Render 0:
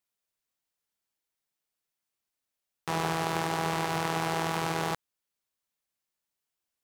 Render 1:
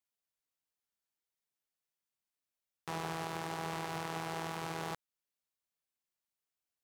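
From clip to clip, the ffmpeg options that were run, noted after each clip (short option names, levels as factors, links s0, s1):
-af "alimiter=limit=0.133:level=0:latency=1:release=359,volume=0.473"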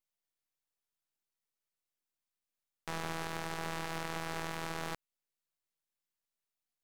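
-af "aeval=exprs='max(val(0),0)':c=same,volume=1.33"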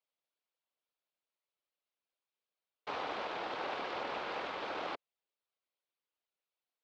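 -af "highpass=f=280:w=0.5412,highpass=f=280:w=1.3066,equalizer=f=300:t=q:w=4:g=-4,equalizer=f=560:t=q:w=4:g=4,equalizer=f=1800:t=q:w=4:g=-6,lowpass=f=4100:w=0.5412,lowpass=f=4100:w=1.3066,afftfilt=real='hypot(re,im)*cos(2*PI*random(0))':imag='hypot(re,im)*sin(2*PI*random(1))':win_size=512:overlap=0.75,volume=2.51"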